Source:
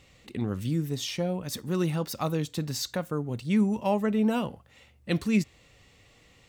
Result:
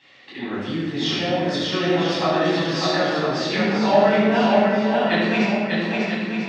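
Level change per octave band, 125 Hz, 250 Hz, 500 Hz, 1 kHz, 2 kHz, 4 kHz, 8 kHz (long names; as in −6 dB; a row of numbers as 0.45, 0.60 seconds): +2.5, +6.5, +12.5, +14.0, +16.5, +12.5, 0.0 decibels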